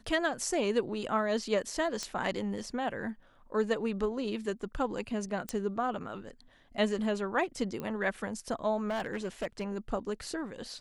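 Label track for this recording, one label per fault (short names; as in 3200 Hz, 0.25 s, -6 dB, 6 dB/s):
2.030000	2.030000	pop -21 dBFS
5.490000	5.490000	pop -19 dBFS
7.800000	7.800000	pop -24 dBFS
8.880000	9.640000	clipped -28.5 dBFS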